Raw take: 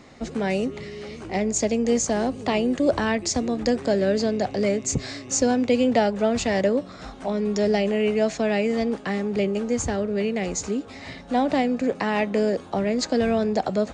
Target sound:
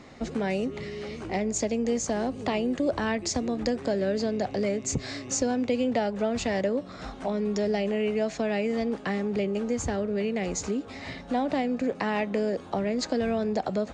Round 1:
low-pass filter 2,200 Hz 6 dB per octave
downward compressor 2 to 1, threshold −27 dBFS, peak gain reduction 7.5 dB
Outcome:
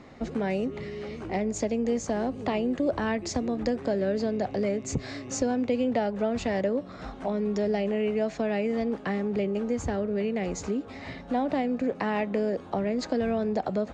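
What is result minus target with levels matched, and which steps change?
8,000 Hz band −5.5 dB
change: low-pass filter 6,800 Hz 6 dB per octave

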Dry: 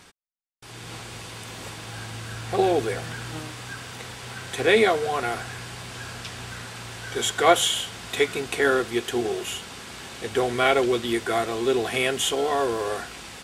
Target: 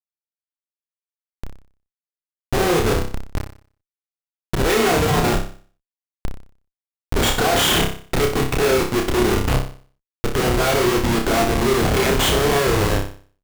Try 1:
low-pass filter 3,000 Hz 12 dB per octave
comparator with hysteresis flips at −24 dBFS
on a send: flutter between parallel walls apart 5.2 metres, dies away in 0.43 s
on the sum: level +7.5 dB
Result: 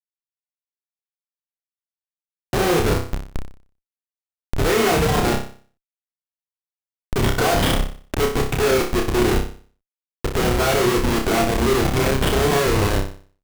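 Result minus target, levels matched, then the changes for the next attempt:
4,000 Hz band −2.5 dB
remove: low-pass filter 3,000 Hz 12 dB per octave

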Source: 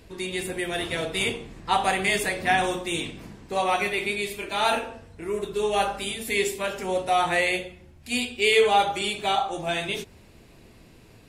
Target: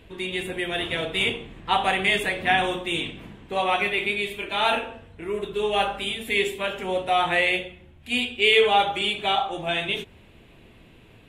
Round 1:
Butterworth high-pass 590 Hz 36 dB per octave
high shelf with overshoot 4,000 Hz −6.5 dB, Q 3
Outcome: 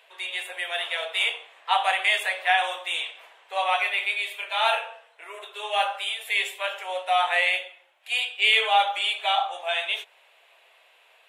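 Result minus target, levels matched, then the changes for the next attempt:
500 Hz band −6.5 dB
remove: Butterworth high-pass 590 Hz 36 dB per octave

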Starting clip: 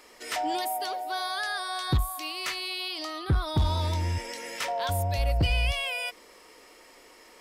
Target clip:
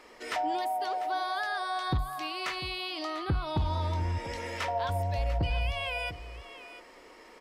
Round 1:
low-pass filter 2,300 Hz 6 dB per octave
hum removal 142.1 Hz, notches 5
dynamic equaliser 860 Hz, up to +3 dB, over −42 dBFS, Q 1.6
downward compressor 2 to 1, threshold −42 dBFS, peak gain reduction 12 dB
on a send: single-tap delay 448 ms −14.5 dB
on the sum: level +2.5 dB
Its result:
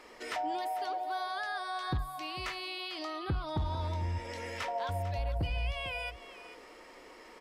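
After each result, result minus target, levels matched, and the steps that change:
echo 248 ms early; downward compressor: peak gain reduction +4 dB
change: single-tap delay 696 ms −14.5 dB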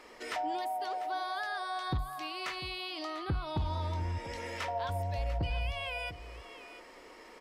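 downward compressor: peak gain reduction +4 dB
change: downward compressor 2 to 1, threshold −34 dBFS, peak gain reduction 8 dB

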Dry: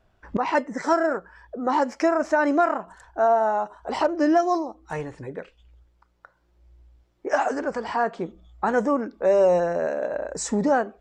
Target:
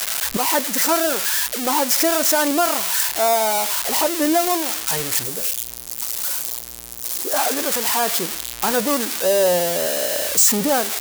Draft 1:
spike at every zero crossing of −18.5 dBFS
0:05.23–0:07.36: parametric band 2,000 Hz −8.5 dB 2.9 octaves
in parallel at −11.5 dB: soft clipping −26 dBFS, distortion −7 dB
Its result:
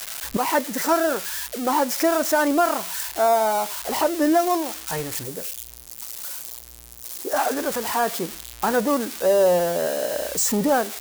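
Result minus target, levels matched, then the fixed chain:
spike at every zero crossing: distortion −10 dB
spike at every zero crossing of −8.5 dBFS
0:05.23–0:07.36: parametric band 2,000 Hz −8.5 dB 2.9 octaves
in parallel at −11.5 dB: soft clipping −26 dBFS, distortion −3 dB

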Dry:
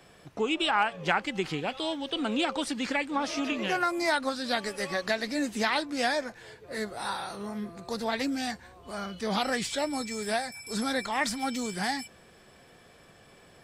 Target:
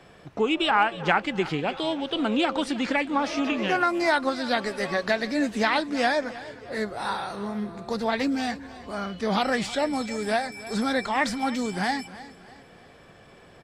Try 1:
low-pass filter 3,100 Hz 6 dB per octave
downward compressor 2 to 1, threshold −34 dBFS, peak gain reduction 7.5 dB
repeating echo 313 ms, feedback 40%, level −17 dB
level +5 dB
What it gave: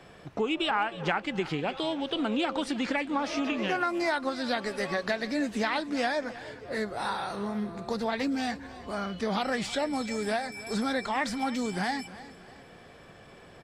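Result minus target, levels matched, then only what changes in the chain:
downward compressor: peak gain reduction +7.5 dB
remove: downward compressor 2 to 1, threshold −34 dBFS, peak gain reduction 7.5 dB

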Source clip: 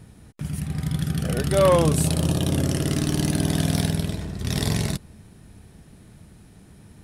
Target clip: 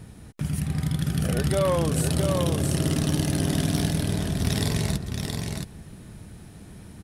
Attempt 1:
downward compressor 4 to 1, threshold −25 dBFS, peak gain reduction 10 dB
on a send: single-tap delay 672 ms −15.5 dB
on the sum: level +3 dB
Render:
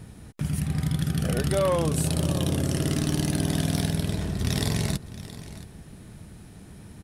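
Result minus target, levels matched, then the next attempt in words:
echo-to-direct −11 dB
downward compressor 4 to 1, threshold −25 dBFS, peak gain reduction 10 dB
on a send: single-tap delay 672 ms −4.5 dB
on the sum: level +3 dB

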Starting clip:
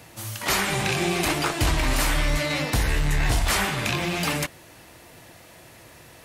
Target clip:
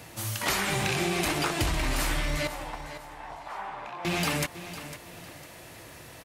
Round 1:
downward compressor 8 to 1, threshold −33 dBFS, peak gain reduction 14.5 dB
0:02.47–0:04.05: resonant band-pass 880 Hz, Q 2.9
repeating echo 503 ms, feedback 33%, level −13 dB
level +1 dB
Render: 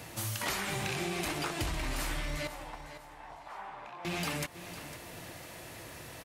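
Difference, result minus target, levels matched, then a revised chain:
downward compressor: peak gain reduction +7 dB
downward compressor 8 to 1, threshold −25 dBFS, peak gain reduction 7.5 dB
0:02.47–0:04.05: resonant band-pass 880 Hz, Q 2.9
repeating echo 503 ms, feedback 33%, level −13 dB
level +1 dB

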